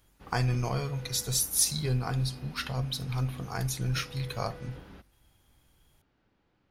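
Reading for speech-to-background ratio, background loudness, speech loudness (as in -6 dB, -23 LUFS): 18.0 dB, -48.5 LUFS, -30.5 LUFS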